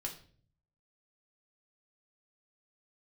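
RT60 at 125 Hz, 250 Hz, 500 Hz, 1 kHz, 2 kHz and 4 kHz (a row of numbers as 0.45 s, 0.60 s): 0.95 s, 0.75 s, 0.55 s, 0.40 s, 0.40 s, 0.40 s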